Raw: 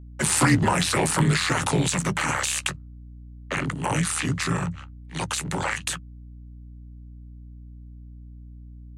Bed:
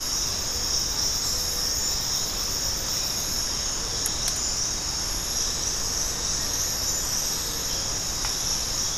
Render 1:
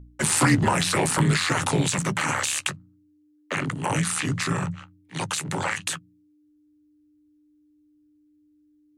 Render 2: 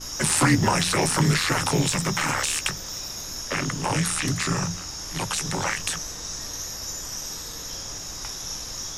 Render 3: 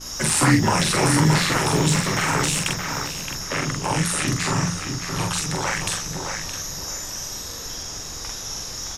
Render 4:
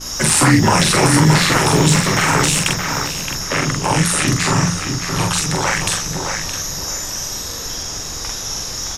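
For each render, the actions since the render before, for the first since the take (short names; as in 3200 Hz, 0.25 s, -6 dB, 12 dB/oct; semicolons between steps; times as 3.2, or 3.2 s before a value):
de-hum 60 Hz, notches 4
add bed -7 dB
doubler 45 ms -3 dB; on a send: darkening echo 0.619 s, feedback 31%, low-pass 2700 Hz, level -5 dB
gain +6.5 dB; limiter -2 dBFS, peak gain reduction 3 dB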